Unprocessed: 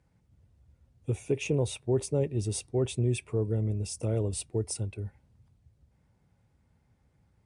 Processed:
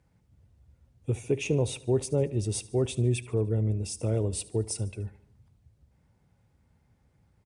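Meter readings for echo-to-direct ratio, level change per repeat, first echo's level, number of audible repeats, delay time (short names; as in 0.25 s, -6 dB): -18.0 dB, -5.5 dB, -19.5 dB, 3, 74 ms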